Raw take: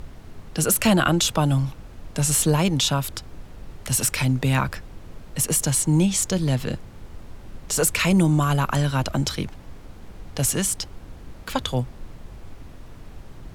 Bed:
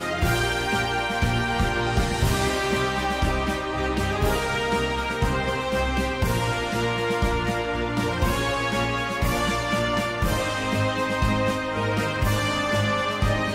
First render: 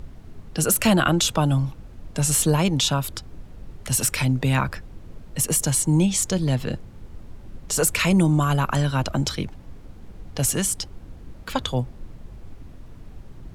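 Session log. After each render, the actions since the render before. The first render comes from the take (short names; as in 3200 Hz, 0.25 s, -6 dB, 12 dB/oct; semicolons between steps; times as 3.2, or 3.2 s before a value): denoiser 6 dB, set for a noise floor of -43 dBFS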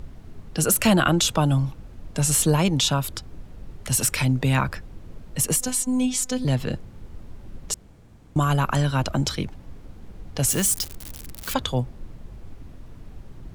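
5.56–6.45 robotiser 254 Hz; 7.74–8.36 room tone; 10.5–11.54 switching spikes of -22.5 dBFS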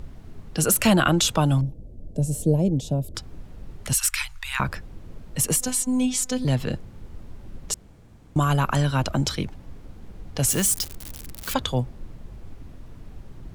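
1.61–3.15 EQ curve 610 Hz 0 dB, 1200 Hz -30 dB, 9000 Hz -13 dB; 3.93–4.6 inverse Chebyshev band-stop 170–410 Hz, stop band 70 dB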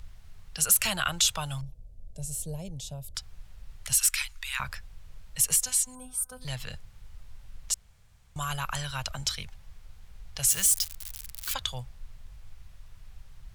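5.95–6.42 spectral gain 1600–8300 Hz -22 dB; passive tone stack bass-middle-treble 10-0-10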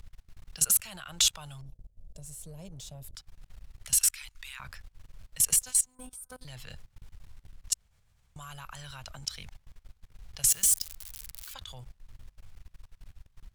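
sample leveller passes 1; level quantiser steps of 22 dB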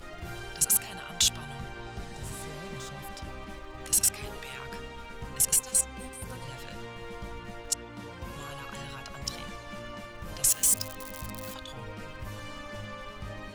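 add bed -18 dB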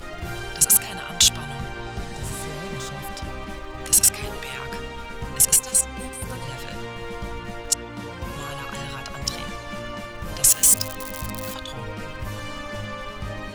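gain +8 dB; limiter -2 dBFS, peak gain reduction 3 dB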